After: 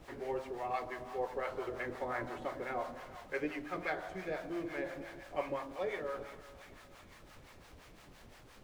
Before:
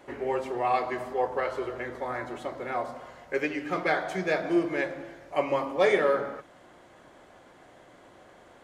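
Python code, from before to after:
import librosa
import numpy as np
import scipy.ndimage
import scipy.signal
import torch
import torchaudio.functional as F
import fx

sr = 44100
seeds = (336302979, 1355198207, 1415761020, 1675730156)

y = fx.rider(x, sr, range_db=10, speed_s=0.5)
y = fx.dmg_noise_colour(y, sr, seeds[0], colour='pink', level_db=-46.0)
y = fx.high_shelf(y, sr, hz=6800.0, db=-11.5)
y = fx.echo_thinned(y, sr, ms=393, feedback_pct=78, hz=780.0, wet_db=-14.0)
y = fx.harmonic_tremolo(y, sr, hz=5.8, depth_pct=70, crossover_hz=590.0)
y = F.gain(torch.from_numpy(y), -7.0).numpy()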